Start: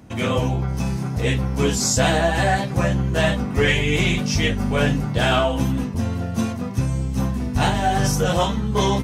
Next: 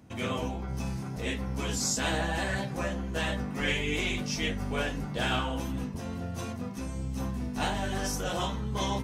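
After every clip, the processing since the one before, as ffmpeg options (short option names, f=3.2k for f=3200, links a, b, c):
-af "afftfilt=real='re*lt(hypot(re,im),0.708)':imag='im*lt(hypot(re,im),0.708)':win_size=1024:overlap=0.75,bandreject=f=56.45:t=h:w=4,bandreject=f=112.9:t=h:w=4,bandreject=f=169.35:t=h:w=4,bandreject=f=225.8:t=h:w=4,bandreject=f=282.25:t=h:w=4,bandreject=f=338.7:t=h:w=4,bandreject=f=395.15:t=h:w=4,bandreject=f=451.6:t=h:w=4,bandreject=f=508.05:t=h:w=4,bandreject=f=564.5:t=h:w=4,bandreject=f=620.95:t=h:w=4,bandreject=f=677.4:t=h:w=4,bandreject=f=733.85:t=h:w=4,bandreject=f=790.3:t=h:w=4,bandreject=f=846.75:t=h:w=4,bandreject=f=903.2:t=h:w=4,bandreject=f=959.65:t=h:w=4,bandreject=f=1.0161k:t=h:w=4,bandreject=f=1.07255k:t=h:w=4,bandreject=f=1.129k:t=h:w=4,bandreject=f=1.18545k:t=h:w=4,bandreject=f=1.2419k:t=h:w=4,bandreject=f=1.29835k:t=h:w=4,bandreject=f=1.3548k:t=h:w=4,bandreject=f=1.41125k:t=h:w=4,bandreject=f=1.4677k:t=h:w=4,bandreject=f=1.52415k:t=h:w=4,bandreject=f=1.5806k:t=h:w=4,bandreject=f=1.63705k:t=h:w=4,bandreject=f=1.6935k:t=h:w=4,bandreject=f=1.74995k:t=h:w=4,bandreject=f=1.8064k:t=h:w=4,bandreject=f=1.86285k:t=h:w=4,bandreject=f=1.9193k:t=h:w=4,bandreject=f=1.97575k:t=h:w=4,bandreject=f=2.0322k:t=h:w=4,bandreject=f=2.08865k:t=h:w=4,bandreject=f=2.1451k:t=h:w=4,bandreject=f=2.20155k:t=h:w=4,volume=-8.5dB"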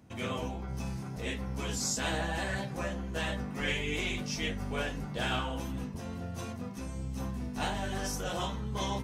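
-af "equalizer=f=280:t=o:w=0.24:g=-2.5,volume=-3dB"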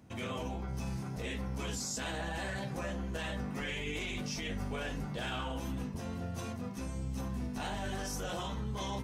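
-af "alimiter=level_in=5dB:limit=-24dB:level=0:latency=1:release=33,volume=-5dB"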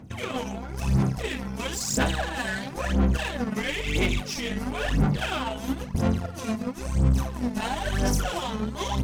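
-filter_complex "[0:a]aphaser=in_gain=1:out_gain=1:delay=4.7:decay=0.74:speed=0.99:type=sinusoidal,asplit=2[a][b];[b]acrusher=bits=4:mix=0:aa=0.5,volume=-5dB[c];[a][c]amix=inputs=2:normalize=0,volume=2.5dB"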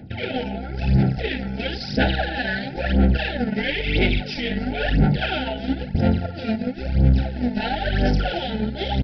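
-af "asuperstop=centerf=1100:order=20:qfactor=2.3,aresample=11025,aresample=44100,volume=5dB"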